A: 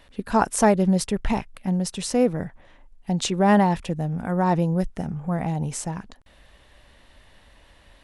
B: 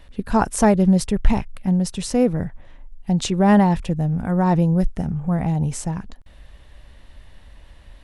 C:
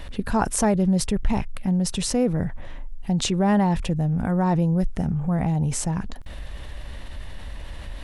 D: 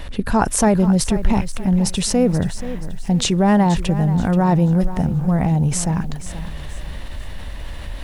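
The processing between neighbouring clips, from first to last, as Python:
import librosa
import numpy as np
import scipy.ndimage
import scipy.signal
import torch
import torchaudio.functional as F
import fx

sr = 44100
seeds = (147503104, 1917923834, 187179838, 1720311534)

y1 = fx.low_shelf(x, sr, hz=150.0, db=12.0)
y2 = fx.env_flatten(y1, sr, amount_pct=50)
y2 = y2 * 10.0 ** (-8.0 / 20.0)
y3 = fx.echo_crushed(y2, sr, ms=480, feedback_pct=35, bits=8, wet_db=-13.0)
y3 = y3 * 10.0 ** (5.0 / 20.0)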